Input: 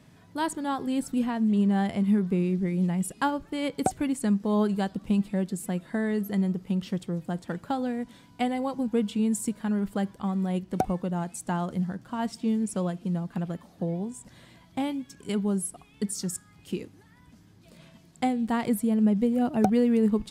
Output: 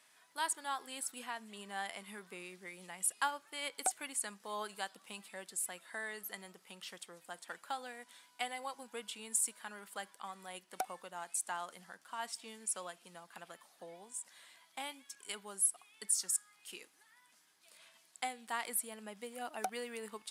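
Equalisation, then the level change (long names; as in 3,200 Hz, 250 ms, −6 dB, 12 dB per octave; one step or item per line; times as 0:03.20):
high-pass filter 1,100 Hz 12 dB per octave
parametric band 9,800 Hz +7.5 dB 0.64 octaves
−3.0 dB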